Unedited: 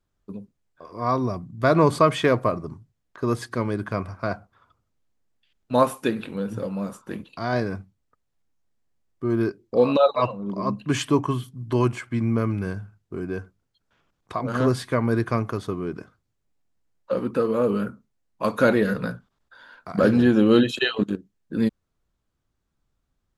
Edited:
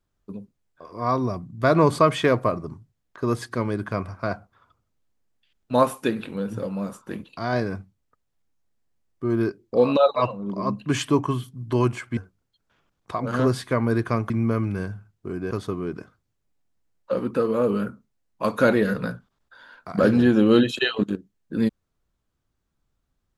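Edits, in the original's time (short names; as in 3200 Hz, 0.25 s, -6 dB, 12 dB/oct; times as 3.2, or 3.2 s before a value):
12.17–13.38 move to 15.51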